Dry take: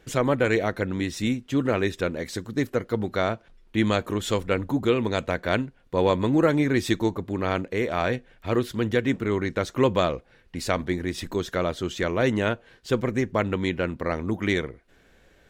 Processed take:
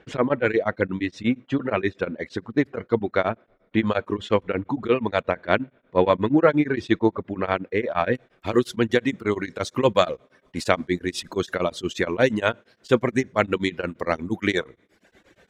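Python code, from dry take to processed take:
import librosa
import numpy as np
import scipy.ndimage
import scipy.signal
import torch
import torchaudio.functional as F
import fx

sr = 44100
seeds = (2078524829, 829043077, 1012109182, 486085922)

y = fx.highpass(x, sr, hz=150.0, slope=6)
y = fx.rev_double_slope(y, sr, seeds[0], early_s=0.49, late_s=4.6, knee_db=-18, drr_db=18.5)
y = fx.dereverb_blind(y, sr, rt60_s=0.85)
y = fx.lowpass(y, sr, hz=fx.steps((0.0, 2700.0), (8.15, 11000.0)), slope=12)
y = y * np.abs(np.cos(np.pi * 8.5 * np.arange(len(y)) / sr))
y = y * 10.0 ** (6.5 / 20.0)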